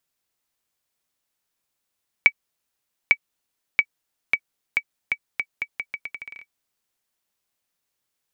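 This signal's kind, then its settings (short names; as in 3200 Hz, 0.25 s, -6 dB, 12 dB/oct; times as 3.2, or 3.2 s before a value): bouncing ball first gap 0.85 s, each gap 0.8, 2280 Hz, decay 61 ms -1.5 dBFS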